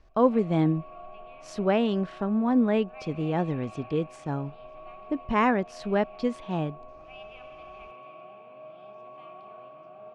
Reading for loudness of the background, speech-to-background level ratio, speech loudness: −46.0 LKFS, 19.0 dB, −27.0 LKFS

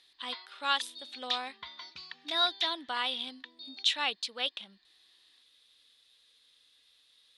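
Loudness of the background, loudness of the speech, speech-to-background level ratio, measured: −40.5 LKFS, −32.5 LKFS, 8.0 dB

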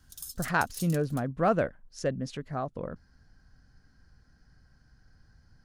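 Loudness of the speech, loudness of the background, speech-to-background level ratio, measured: −31.0 LKFS, −42.0 LKFS, 11.0 dB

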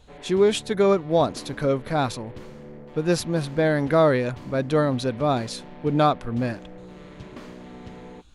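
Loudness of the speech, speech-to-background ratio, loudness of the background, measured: −23.0 LKFS, 19.5 dB, −42.5 LKFS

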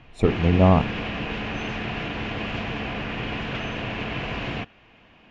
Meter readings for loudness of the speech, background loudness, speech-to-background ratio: −20.0 LKFS, −29.5 LKFS, 9.5 dB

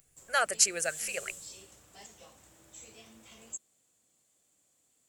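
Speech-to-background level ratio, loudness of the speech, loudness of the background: 18.0 dB, −28.5 LKFS, −46.5 LKFS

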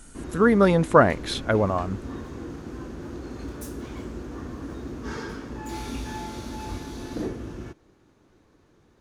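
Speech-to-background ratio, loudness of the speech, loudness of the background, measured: 15.0 dB, −21.0 LKFS, −36.0 LKFS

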